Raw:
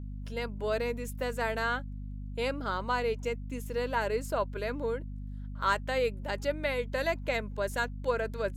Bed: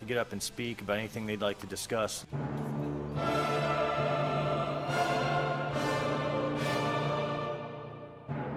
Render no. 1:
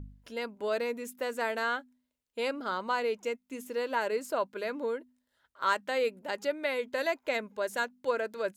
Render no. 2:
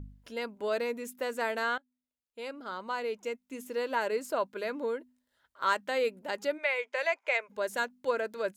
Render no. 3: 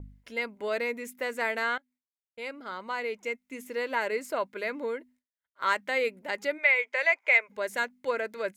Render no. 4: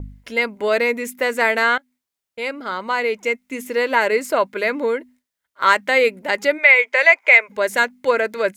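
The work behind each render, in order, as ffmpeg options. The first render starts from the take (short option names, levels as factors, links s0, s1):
-af "bandreject=f=50:t=h:w=4,bandreject=f=100:t=h:w=4,bandreject=f=150:t=h:w=4,bandreject=f=200:t=h:w=4,bandreject=f=250:t=h:w=4"
-filter_complex "[0:a]asplit=3[s0][s1][s2];[s0]afade=t=out:st=6.57:d=0.02[s3];[s1]highpass=f=500:w=0.5412,highpass=f=500:w=1.3066,equalizer=f=2300:t=q:w=4:g=9,equalizer=f=4000:t=q:w=4:g=-6,equalizer=f=8000:t=q:w=4:g=-4,lowpass=f=9100:w=0.5412,lowpass=f=9100:w=1.3066,afade=t=in:st=6.57:d=0.02,afade=t=out:st=7.48:d=0.02[s4];[s2]afade=t=in:st=7.48:d=0.02[s5];[s3][s4][s5]amix=inputs=3:normalize=0,asplit=2[s6][s7];[s6]atrim=end=1.78,asetpts=PTS-STARTPTS,afade=t=out:st=1.776:d=0.004:c=hsin:silence=0.0944061[s8];[s7]atrim=start=1.78,asetpts=PTS-STARTPTS,afade=t=in:d=2:silence=0.0944061[s9];[s8][s9]concat=n=2:v=0:a=1"
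-af "agate=range=0.0224:threshold=0.002:ratio=3:detection=peak,equalizer=f=2100:w=3.5:g=10.5"
-af "volume=3.98,alimiter=limit=0.891:level=0:latency=1"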